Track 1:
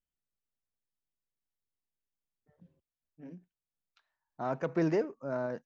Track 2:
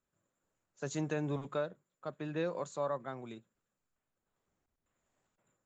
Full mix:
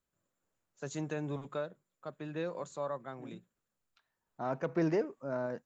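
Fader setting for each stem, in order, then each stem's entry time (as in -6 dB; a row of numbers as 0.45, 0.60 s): -1.5, -2.0 dB; 0.00, 0.00 s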